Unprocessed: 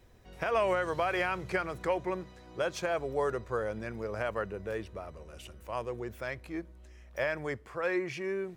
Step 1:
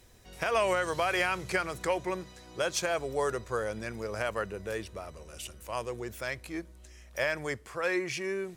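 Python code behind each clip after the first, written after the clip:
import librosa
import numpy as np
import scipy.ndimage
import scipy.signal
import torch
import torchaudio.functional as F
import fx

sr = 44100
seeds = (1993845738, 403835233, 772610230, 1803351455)

y = fx.peak_eq(x, sr, hz=9300.0, db=13.0, octaves=2.5)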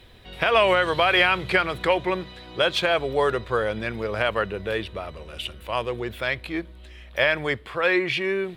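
y = fx.high_shelf_res(x, sr, hz=4700.0, db=-10.0, q=3.0)
y = y * 10.0 ** (8.0 / 20.0)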